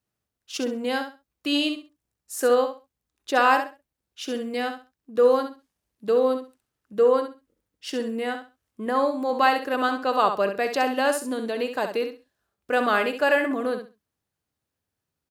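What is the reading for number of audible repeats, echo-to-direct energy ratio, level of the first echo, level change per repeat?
2, -8.0 dB, -8.0 dB, -13.5 dB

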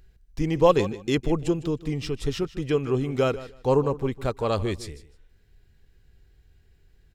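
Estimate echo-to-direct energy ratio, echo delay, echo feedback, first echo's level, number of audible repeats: -16.0 dB, 154 ms, 17%, -16.0 dB, 2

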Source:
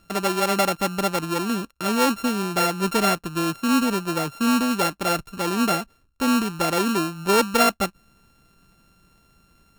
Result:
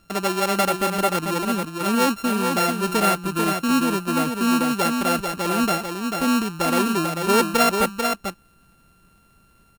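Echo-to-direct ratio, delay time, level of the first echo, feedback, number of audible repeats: -5.0 dB, 442 ms, -5.0 dB, no regular repeats, 1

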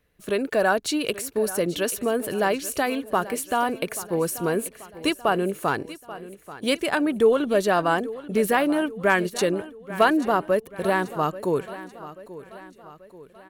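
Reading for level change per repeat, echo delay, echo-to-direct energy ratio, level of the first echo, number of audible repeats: -6.0 dB, 835 ms, -15.0 dB, -16.0 dB, 4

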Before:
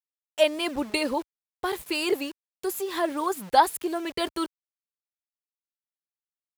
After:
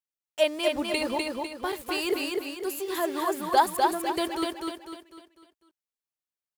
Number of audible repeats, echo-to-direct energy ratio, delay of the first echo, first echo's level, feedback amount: 5, -2.0 dB, 250 ms, -3.0 dB, 42%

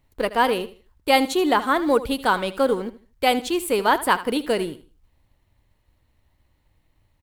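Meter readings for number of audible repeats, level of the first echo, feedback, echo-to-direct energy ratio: 2, -15.5 dB, 27%, -15.0 dB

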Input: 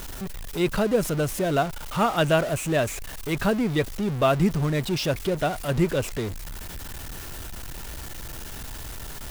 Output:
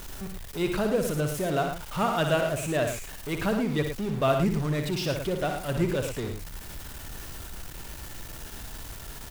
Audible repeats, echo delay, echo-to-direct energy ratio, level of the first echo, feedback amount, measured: 2, 60 ms, -4.5 dB, -7.0 dB, no regular repeats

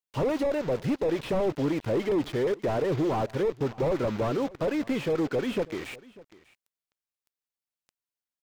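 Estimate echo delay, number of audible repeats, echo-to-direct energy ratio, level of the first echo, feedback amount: 595 ms, 1, -21.5 dB, -21.5 dB, no regular repeats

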